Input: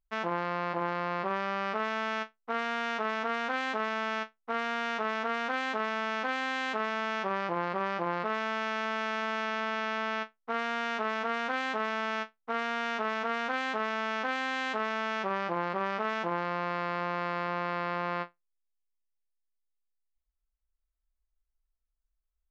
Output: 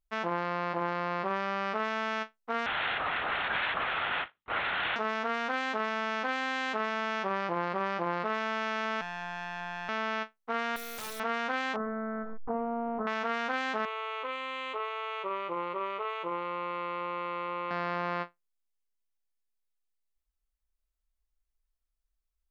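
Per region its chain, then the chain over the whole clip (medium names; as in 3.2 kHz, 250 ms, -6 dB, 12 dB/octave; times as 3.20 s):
2.66–4.96 s: LPC vocoder at 8 kHz whisper + tilt EQ +4 dB/octave
9.01–9.89 s: partial rectifier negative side -3 dB + robot voice 175 Hz + loudspeaker Doppler distortion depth 0.31 ms
10.76–11.20 s: low-pass 5.9 kHz + integer overflow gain 33 dB
11.76–13.07 s: one-bit delta coder 64 kbps, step -32.5 dBFS + low-pass 1.1 kHz 24 dB/octave + comb 4 ms, depth 76%
13.85–17.71 s: treble shelf 5.4 kHz -4.5 dB + static phaser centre 1.1 kHz, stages 8
whole clip: none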